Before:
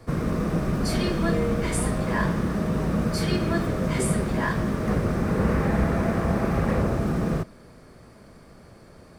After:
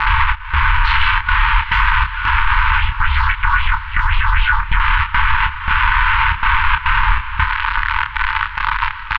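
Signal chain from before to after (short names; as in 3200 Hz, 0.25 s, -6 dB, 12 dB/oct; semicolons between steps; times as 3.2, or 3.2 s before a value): fuzz box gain 44 dB, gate -44 dBFS; FFT band-reject 300–1100 Hz; mistuned SSB -240 Hz 230–3200 Hz; small resonant body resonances 300/600/1500 Hz, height 7 dB; step gate "xxx..xxxxxx.xxx." 140 bpm -24 dB; compressor 10:1, threshold -40 dBFS, peak gain reduction 25.5 dB; 2.78–4.8 phaser stages 4, 3.8 Hz, lowest notch 360–1600 Hz; doubler 28 ms -6.5 dB; diffused feedback echo 0.618 s, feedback 45%, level -15 dB; maximiser +31.5 dB; gain -2 dB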